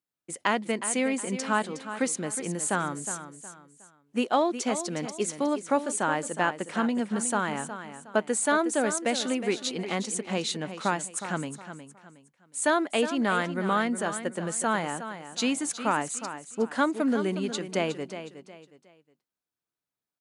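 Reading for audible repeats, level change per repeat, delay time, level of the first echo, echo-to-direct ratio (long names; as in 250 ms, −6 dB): 3, −10.0 dB, 364 ms, −11.0 dB, −10.5 dB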